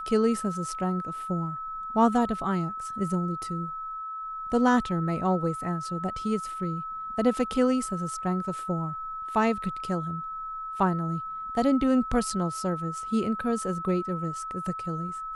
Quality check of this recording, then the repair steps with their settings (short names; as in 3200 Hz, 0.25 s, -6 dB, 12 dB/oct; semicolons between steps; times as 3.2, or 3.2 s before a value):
tone 1300 Hz -33 dBFS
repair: notch 1300 Hz, Q 30